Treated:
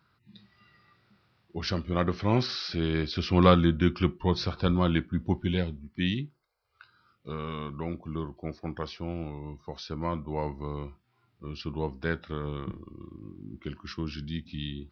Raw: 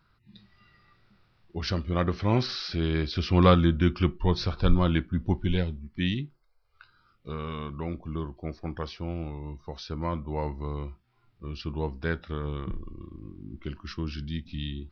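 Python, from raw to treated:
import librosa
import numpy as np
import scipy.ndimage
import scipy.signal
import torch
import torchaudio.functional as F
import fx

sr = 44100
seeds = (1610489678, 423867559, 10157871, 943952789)

y = scipy.signal.sosfilt(scipy.signal.butter(2, 96.0, 'highpass', fs=sr, output='sos'), x)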